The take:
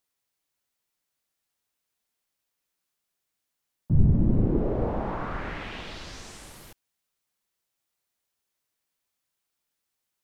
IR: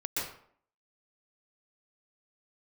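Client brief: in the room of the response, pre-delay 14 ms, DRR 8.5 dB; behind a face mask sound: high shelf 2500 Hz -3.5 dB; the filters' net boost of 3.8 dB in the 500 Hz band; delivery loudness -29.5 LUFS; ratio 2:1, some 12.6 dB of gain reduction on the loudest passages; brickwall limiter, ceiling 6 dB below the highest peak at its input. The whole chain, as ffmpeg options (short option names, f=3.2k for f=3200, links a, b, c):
-filter_complex "[0:a]equalizer=f=500:t=o:g=5,acompressor=threshold=-37dB:ratio=2,alimiter=level_in=2.5dB:limit=-24dB:level=0:latency=1,volume=-2.5dB,asplit=2[a][b];[1:a]atrim=start_sample=2205,adelay=14[c];[b][c]afir=irnorm=-1:irlink=0,volume=-14dB[d];[a][d]amix=inputs=2:normalize=0,highshelf=f=2.5k:g=-3.5,volume=8.5dB"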